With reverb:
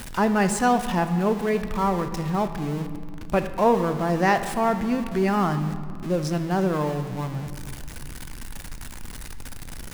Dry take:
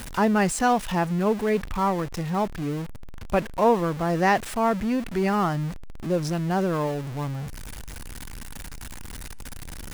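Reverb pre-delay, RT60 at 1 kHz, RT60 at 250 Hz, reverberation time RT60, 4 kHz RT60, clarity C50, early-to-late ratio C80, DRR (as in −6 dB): 5 ms, 2.1 s, 3.3 s, 2.3 s, 1.3 s, 10.5 dB, 12.0 dB, 9.0 dB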